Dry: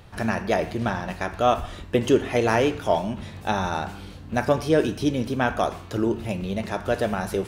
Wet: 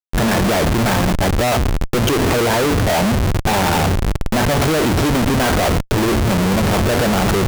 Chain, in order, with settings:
0:01.06–0:03.04: spectral envelope exaggerated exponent 1.5
harmonic generator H 3 −44 dB, 5 −29 dB, 6 −19 dB, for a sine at −6.5 dBFS
comparator with hysteresis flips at −32 dBFS
level +8 dB

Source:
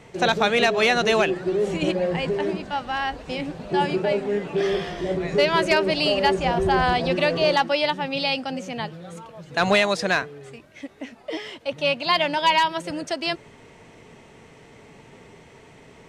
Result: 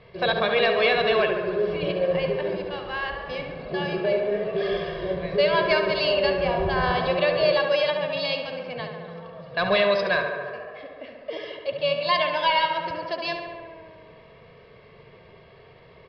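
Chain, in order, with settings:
comb filter 1.8 ms, depth 68%
tape delay 70 ms, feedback 87%, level −5.5 dB, low-pass 3,000 Hz
downsampling to 11,025 Hz
level −5 dB

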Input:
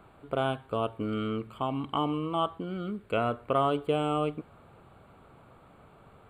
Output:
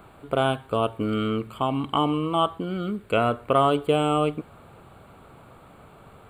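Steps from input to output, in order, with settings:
high-shelf EQ 5,500 Hz +7.5 dB
level +6 dB

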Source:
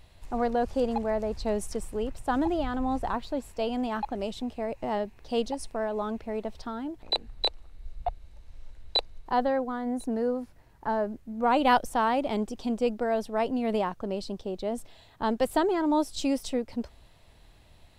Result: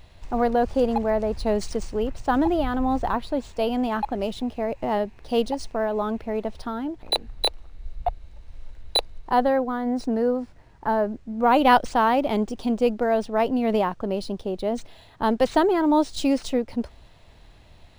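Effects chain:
linearly interpolated sample-rate reduction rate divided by 3×
level +5.5 dB

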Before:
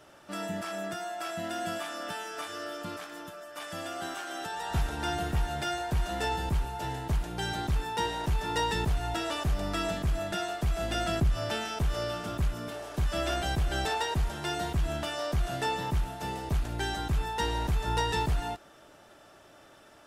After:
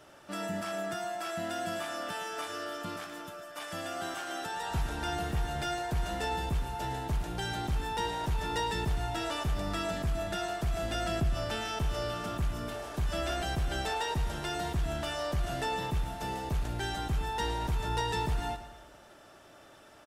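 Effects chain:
in parallel at +1.5 dB: brickwall limiter −27 dBFS, peak gain reduction 8 dB
on the sum: repeating echo 111 ms, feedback 55%, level −13.5 dB
level −7 dB

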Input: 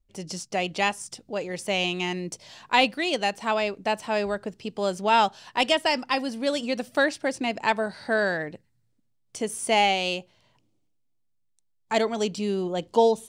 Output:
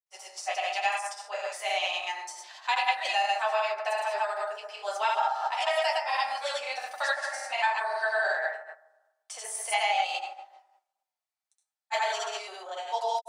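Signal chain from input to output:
convolution reverb RT60 0.95 s, pre-delay 4 ms, DRR −5 dB
granular cloud 118 ms, pitch spread up and down by 0 semitones
Butterworth high-pass 670 Hz 36 dB per octave
downward compressor 2.5 to 1, threshold −22 dBFS, peak gain reduction 8 dB
level −2.5 dB

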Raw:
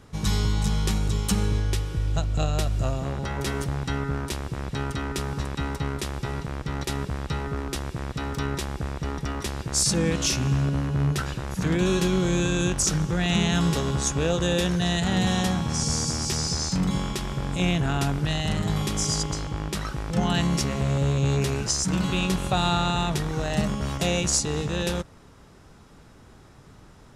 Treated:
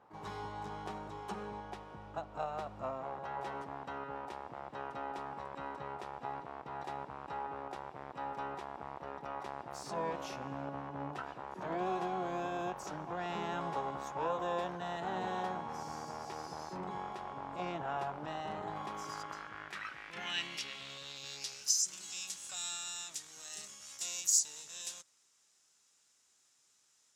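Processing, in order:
pitch-shifted copies added +12 semitones −8 dB
band-pass filter sweep 850 Hz → 7,000 Hz, 0:18.67–0:21.93
level −2.5 dB

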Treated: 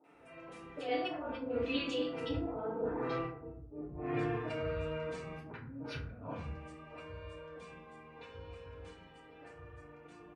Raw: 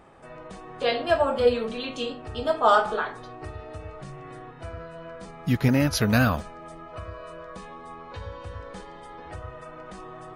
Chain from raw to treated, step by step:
source passing by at 0:03.57, 19 m/s, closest 1.3 metres
treble cut that deepens with the level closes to 320 Hz, closed at −44.5 dBFS
compressor whose output falls as the input rises −59 dBFS, ratio −0.5
high-pass filter 58 Hz
parametric band 2,500 Hz +9.5 dB 0.39 octaves
three-band delay without the direct sound mids, highs, lows 40/140 ms, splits 170/920 Hz
feedback delay network reverb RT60 0.56 s, low-frequency decay 1.2×, high-frequency decay 0.45×, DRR −6.5 dB
level +12.5 dB

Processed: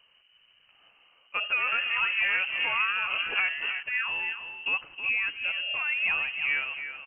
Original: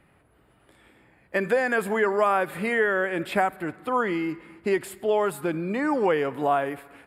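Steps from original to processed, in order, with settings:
low-shelf EQ 150 Hz +9.5 dB
single-tap delay 317 ms −9 dB
0:01.48–0:03.83: delay with pitch and tempo change per echo 80 ms, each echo −6 semitones, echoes 2, each echo −6 dB
voice inversion scrambler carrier 3,000 Hz
level −6.5 dB

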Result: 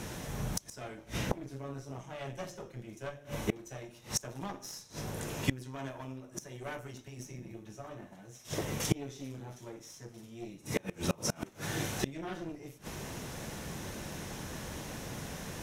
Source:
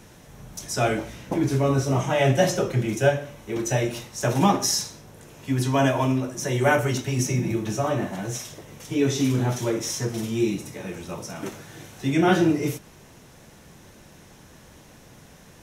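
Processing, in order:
harmonic generator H 4 −11 dB, 5 −26 dB, 8 −45 dB, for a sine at −5.5 dBFS
gate with flip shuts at −21 dBFS, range −29 dB
level +5.5 dB

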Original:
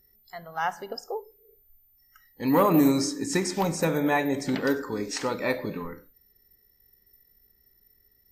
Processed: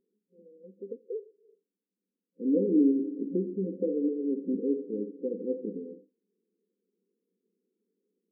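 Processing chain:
brick-wall band-pass 180–530 Hz
level −2 dB

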